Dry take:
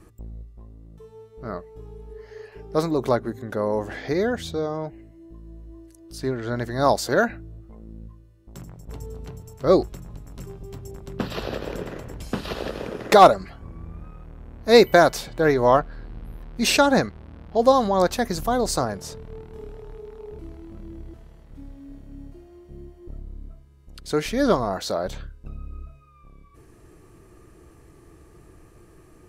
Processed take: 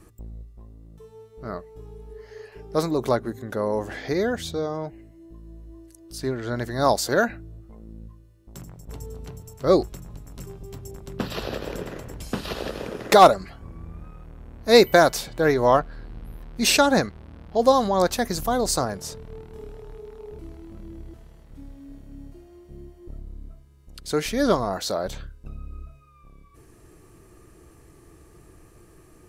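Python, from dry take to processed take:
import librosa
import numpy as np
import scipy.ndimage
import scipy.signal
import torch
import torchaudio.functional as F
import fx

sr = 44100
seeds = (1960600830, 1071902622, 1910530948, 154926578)

y = fx.high_shelf(x, sr, hz=4600.0, db=5.5)
y = y * 10.0 ** (-1.0 / 20.0)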